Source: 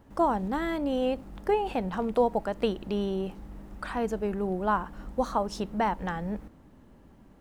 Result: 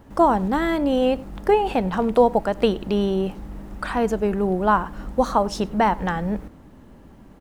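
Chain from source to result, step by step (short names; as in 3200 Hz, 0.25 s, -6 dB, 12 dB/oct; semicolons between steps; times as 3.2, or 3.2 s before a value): outdoor echo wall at 17 m, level -23 dB; gain +8 dB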